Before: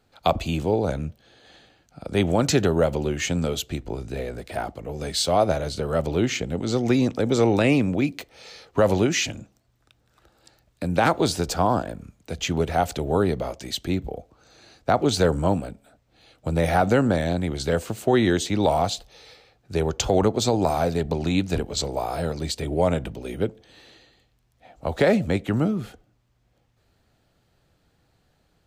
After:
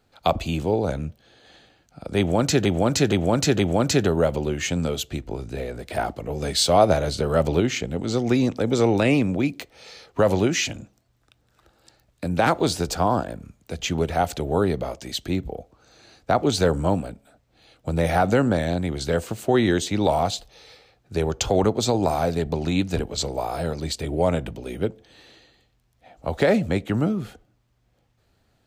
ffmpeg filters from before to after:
-filter_complex "[0:a]asplit=6[a][b][c][d][e][f];[a]atrim=end=2.652[g];[b]atrim=start=2.178:end=2.652[h];[c]atrim=start=2.178:end=2.652[i];[d]atrim=start=2.178:end=4.472[j];[e]atrim=start=4.468:end=6.192,asetpts=PTS-STARTPTS,volume=3.5dB[k];[f]atrim=start=6.188[l];[g][h]acrossfade=d=0.004:c1=hsin:c2=hsin[m];[m][i]acrossfade=d=0.004:c1=hsin:c2=hsin[n];[n][j]acrossfade=d=0.004:c1=hsin:c2=hsin[o];[o][k]acrossfade=d=0.004:c1=hsin:c2=hsin[p];[p][l]acrossfade=d=0.004:c1=hsin:c2=hsin"

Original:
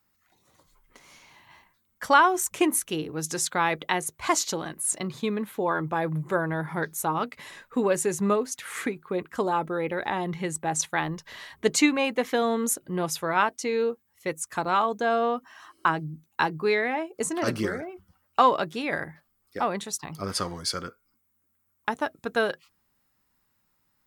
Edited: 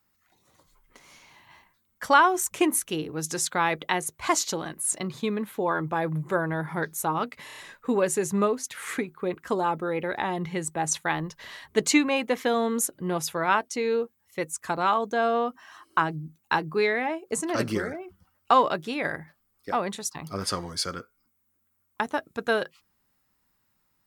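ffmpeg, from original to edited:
-filter_complex "[0:a]asplit=5[a][b][c][d][e];[a]atrim=end=7.482[f];[b]atrim=start=7.448:end=7.482[g];[c]atrim=start=7.448:end=7.482[h];[d]atrim=start=7.448:end=7.482[i];[e]atrim=start=7.448[j];[f][g]acrossfade=d=0.004:c1=hsin:c2=hsin[k];[k][h]acrossfade=d=0.004:c1=hsin:c2=hsin[l];[l][i]acrossfade=d=0.004:c1=hsin:c2=hsin[m];[m][j]acrossfade=d=0.004:c1=hsin:c2=hsin"

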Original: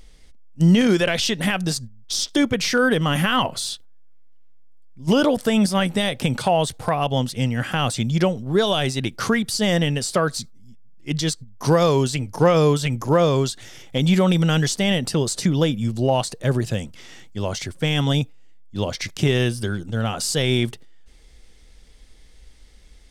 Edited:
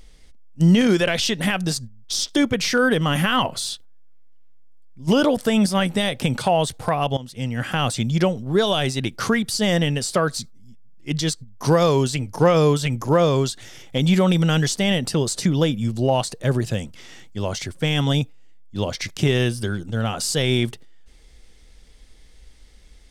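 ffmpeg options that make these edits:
-filter_complex "[0:a]asplit=2[a][b];[a]atrim=end=7.17,asetpts=PTS-STARTPTS,afade=t=out:st=7.166:d=0.004:c=hsin:silence=0.125893[c];[b]atrim=start=7.17,asetpts=PTS-STARTPTS,afade=t=in:d=0.52:silence=0.125893[d];[c][d]concat=n=2:v=0:a=1"

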